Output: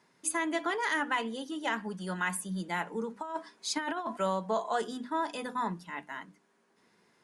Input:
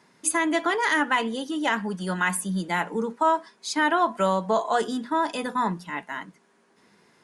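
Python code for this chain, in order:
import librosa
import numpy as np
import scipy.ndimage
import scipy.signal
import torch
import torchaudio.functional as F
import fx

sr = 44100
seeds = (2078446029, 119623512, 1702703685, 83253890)

y = fx.hum_notches(x, sr, base_hz=50, count=6)
y = fx.over_compress(y, sr, threshold_db=-25.0, ratio=-0.5, at=(3.16, 4.18))
y = y * librosa.db_to_amplitude(-7.5)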